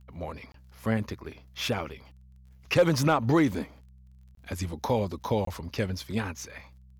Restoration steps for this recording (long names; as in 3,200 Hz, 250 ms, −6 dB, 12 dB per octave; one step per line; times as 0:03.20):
click removal
hum removal 63.9 Hz, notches 3
repair the gap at 0:00.52/0:04.35/0:05.45, 23 ms